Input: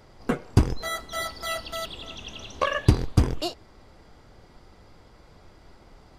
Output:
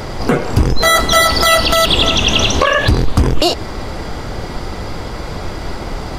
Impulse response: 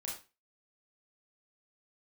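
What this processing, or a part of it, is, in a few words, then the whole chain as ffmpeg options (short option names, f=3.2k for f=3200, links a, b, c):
loud club master: -af "acompressor=threshold=-30dB:ratio=2.5,asoftclip=type=hard:threshold=-18dB,alimiter=level_in=29.5dB:limit=-1dB:release=50:level=0:latency=1,volume=-1.5dB"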